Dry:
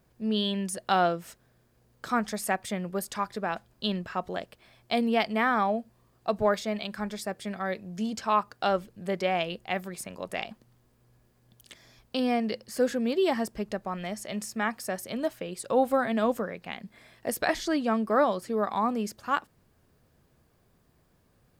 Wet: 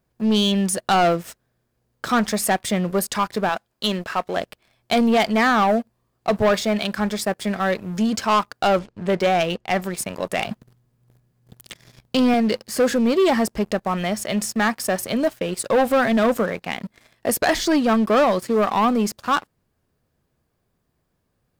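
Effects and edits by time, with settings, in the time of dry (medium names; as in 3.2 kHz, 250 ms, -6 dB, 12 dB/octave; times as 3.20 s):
3.49–4.37 s: bass shelf 220 Hz -11 dB
8.79–9.82 s: distance through air 89 m
10.46–12.34 s: peaking EQ 140 Hz +14 dB
whole clip: waveshaping leveller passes 3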